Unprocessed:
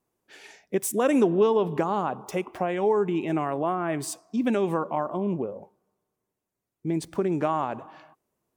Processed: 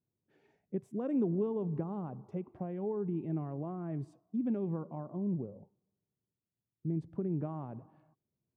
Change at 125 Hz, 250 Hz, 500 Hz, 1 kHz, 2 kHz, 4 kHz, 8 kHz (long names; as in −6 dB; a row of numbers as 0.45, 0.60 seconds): −2.5 dB, −7.5 dB, −13.5 dB, −20.0 dB, below −25 dB, below −30 dB, below −35 dB